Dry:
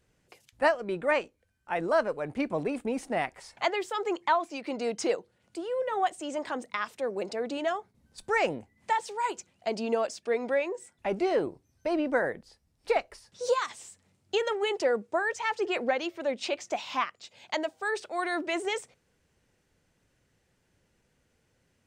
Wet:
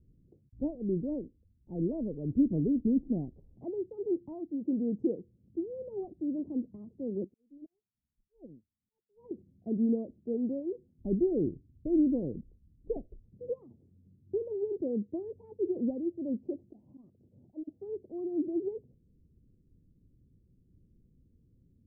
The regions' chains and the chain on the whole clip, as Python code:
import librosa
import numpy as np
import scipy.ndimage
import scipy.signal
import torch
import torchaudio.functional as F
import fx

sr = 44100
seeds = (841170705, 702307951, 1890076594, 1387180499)

y = fx.chain(x, sr, fx.auto_swell(attack_ms=391.0),
    fx.upward_expand(threshold_db=-49.0, expansion=2.5), at=(7.24, 9.31))
y = fx.chain(y, sr, fx.auto_swell(attack_ms=210.0),
    fx.over_compress(threshold_db=-41.0, ratio=-0.5), at=(16.68, 17.69))
y = scipy.signal.sosfilt(scipy.signal.cheby2(4, 70, 1400.0, 'lowpass', fs=sr, output='sos'), y)
y = fx.low_shelf(y, sr, hz=63.0, db=6.5)
y = y * 10.0 ** (7.5 / 20.0)